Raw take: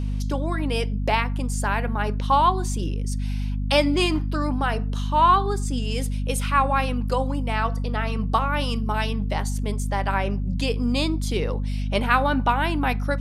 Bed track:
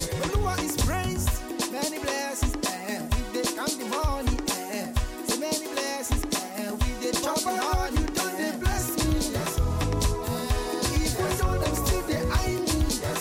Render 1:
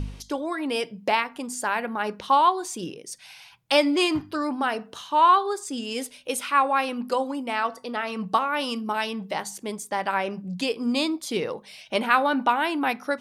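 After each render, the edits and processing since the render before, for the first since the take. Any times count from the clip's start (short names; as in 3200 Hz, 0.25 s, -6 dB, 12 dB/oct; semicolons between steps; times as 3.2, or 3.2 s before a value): de-hum 50 Hz, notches 5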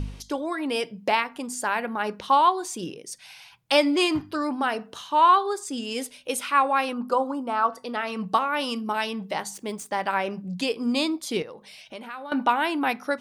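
6.93–7.73 resonant high shelf 1600 Hz -6.5 dB, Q 3; 9.54–10.43 median filter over 3 samples; 11.42–12.32 compressor 2.5:1, threshold -42 dBFS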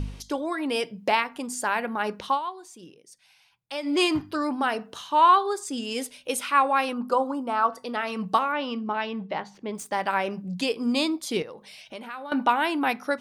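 2.26–3.96 dip -13.5 dB, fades 0.14 s; 8.52–9.75 air absorption 270 m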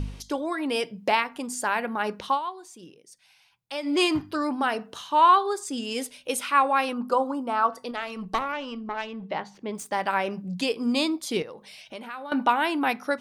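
7.91–9.23 tube stage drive 18 dB, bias 0.75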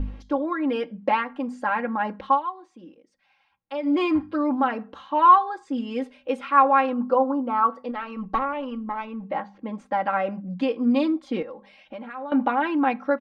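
LPF 1700 Hz 12 dB/oct; comb 3.7 ms, depth 84%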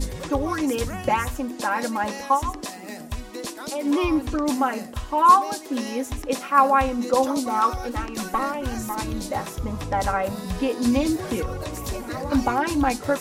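add bed track -5.5 dB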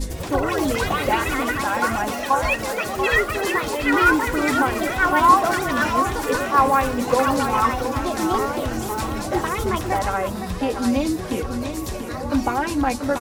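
on a send: feedback echo 0.687 s, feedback 34%, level -8 dB; on the sum: echoes that change speed 97 ms, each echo +5 st, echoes 3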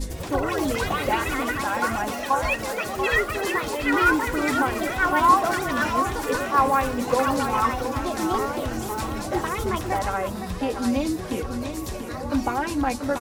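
gain -3 dB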